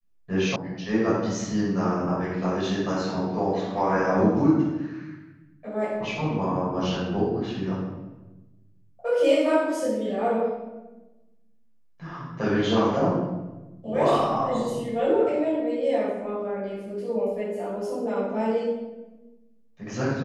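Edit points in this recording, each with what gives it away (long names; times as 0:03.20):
0:00.56: cut off before it has died away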